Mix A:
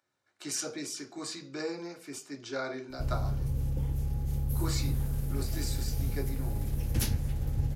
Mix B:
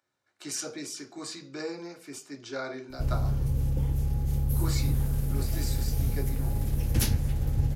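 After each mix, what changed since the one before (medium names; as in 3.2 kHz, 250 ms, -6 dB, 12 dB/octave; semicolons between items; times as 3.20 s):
background +4.0 dB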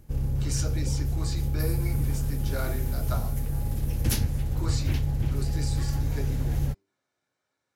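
background: entry -2.90 s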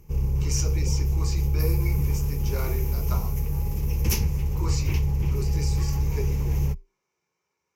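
master: add rippled EQ curve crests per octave 0.78, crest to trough 12 dB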